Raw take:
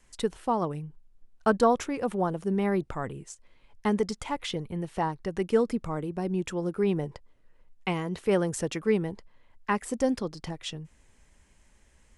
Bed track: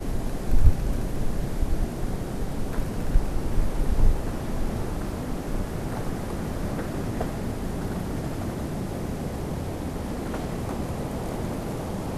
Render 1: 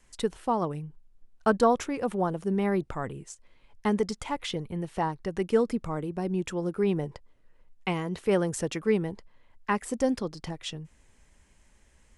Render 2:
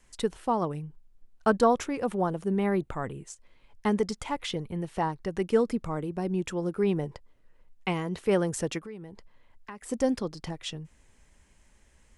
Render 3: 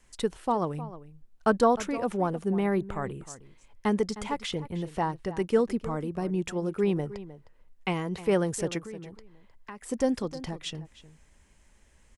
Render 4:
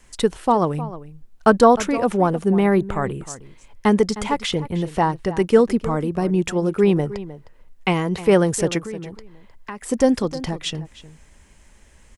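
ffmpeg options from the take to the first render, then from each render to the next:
-af anull
-filter_complex "[0:a]asettb=1/sr,asplit=3[s0][s1][s2];[s0]atrim=end=2.434[s3];[s1]atrim=start=2.43:end=3.27,asetpts=PTS-STARTPTS,afade=t=in:d=0.004:c=qsin,afade=t=out:st=0.836:d=0.004:c=qsin,equalizer=f=5300:w=5.5:g=-9.5[s4];[s2]atrim=start=3.266[s5];[s3][s4]acrossfade=d=0.004:c1=hsin:c2=qsin[s6];[s6][s5]acrossfade=d=0.004:c1=qsin:c2=hsin,asplit=3[s7][s8][s9];[s7]afade=t=out:st=8.78:d=0.02[s10];[s8]acompressor=threshold=0.00891:ratio=4:attack=3.2:release=140:knee=1:detection=peak,afade=t=in:st=8.78:d=0.02,afade=t=out:st=9.88:d=0.02[s11];[s9]afade=t=in:st=9.88:d=0.02[s12];[s10][s11][s12]amix=inputs=3:normalize=0"
-filter_complex "[0:a]asplit=2[s0][s1];[s1]adelay=309,volume=0.178,highshelf=f=4000:g=-6.95[s2];[s0][s2]amix=inputs=2:normalize=0"
-af "volume=2.99,alimiter=limit=0.794:level=0:latency=1"

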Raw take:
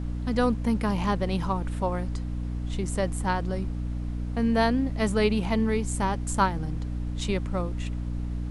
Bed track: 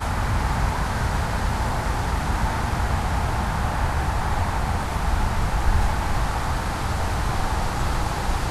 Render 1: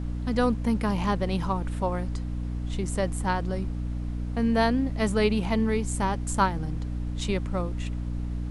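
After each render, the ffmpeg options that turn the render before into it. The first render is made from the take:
-af anull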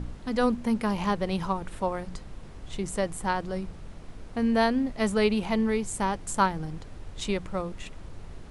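-af "bandreject=f=60:t=h:w=4,bandreject=f=120:t=h:w=4,bandreject=f=180:t=h:w=4,bandreject=f=240:t=h:w=4,bandreject=f=300:t=h:w=4"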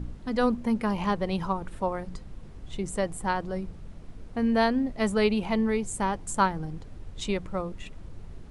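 -af "afftdn=nr=6:nf=-44"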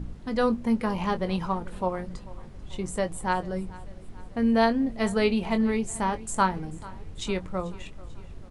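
-filter_complex "[0:a]asplit=2[s0][s1];[s1]adelay=22,volume=0.316[s2];[s0][s2]amix=inputs=2:normalize=0,aecho=1:1:440|880|1320|1760:0.0944|0.0491|0.0255|0.0133"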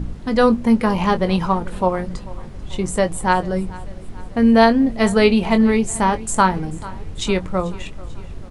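-af "volume=2.99,alimiter=limit=0.708:level=0:latency=1"

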